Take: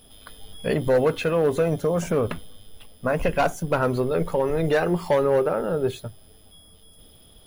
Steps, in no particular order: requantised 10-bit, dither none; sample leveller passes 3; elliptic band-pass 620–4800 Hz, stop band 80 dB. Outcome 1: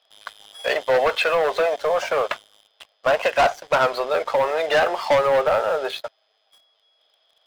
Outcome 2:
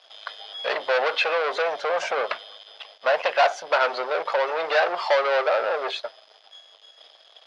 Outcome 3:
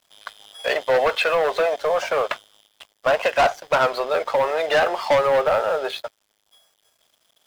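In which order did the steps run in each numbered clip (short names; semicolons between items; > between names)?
requantised > elliptic band-pass > sample leveller; sample leveller > requantised > elliptic band-pass; elliptic band-pass > sample leveller > requantised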